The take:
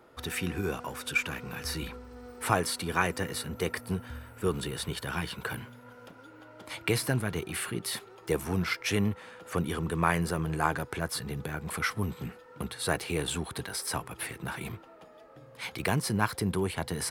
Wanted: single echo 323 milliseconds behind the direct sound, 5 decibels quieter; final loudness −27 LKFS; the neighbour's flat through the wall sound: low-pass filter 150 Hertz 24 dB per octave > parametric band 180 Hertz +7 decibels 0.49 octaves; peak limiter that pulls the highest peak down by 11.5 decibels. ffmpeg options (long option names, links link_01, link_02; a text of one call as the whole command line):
ffmpeg -i in.wav -af "alimiter=limit=-21dB:level=0:latency=1,lowpass=frequency=150:width=0.5412,lowpass=frequency=150:width=1.3066,equalizer=frequency=180:width_type=o:width=0.49:gain=7,aecho=1:1:323:0.562,volume=12dB" out.wav